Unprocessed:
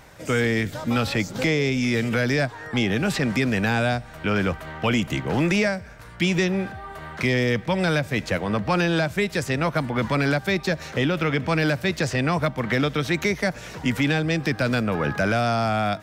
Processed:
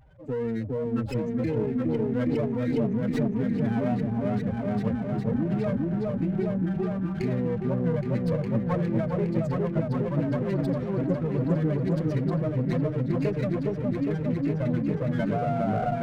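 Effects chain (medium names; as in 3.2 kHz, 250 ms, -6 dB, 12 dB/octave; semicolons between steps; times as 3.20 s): spectral contrast enhancement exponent 3.3; delay with an opening low-pass 410 ms, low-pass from 750 Hz, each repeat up 1 oct, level 0 dB; sliding maximum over 9 samples; trim -6.5 dB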